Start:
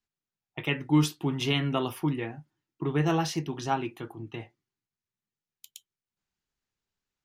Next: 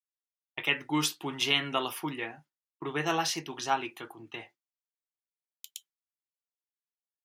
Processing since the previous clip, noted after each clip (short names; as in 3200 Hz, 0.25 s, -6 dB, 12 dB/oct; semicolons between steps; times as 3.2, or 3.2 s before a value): HPF 1100 Hz 6 dB/oct; expander -55 dBFS; gain +4.5 dB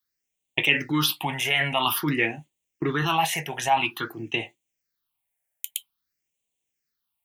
high shelf 11000 Hz +3.5 dB; in parallel at 0 dB: negative-ratio compressor -34 dBFS, ratio -0.5; on the sum: phaser stages 6, 0.5 Hz, lowest notch 300–1400 Hz; gain +6.5 dB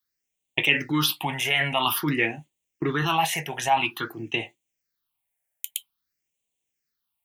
nothing audible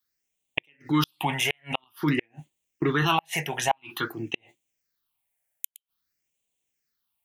flipped gate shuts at -12 dBFS, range -42 dB; gain +1.5 dB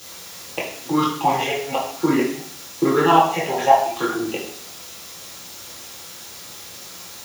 band-pass 630 Hz, Q 0.84; in parallel at -10 dB: requantised 6-bit, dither triangular; on the sum: reverb RT60 0.60 s, pre-delay 3 ms, DRR -6 dB; gain +2 dB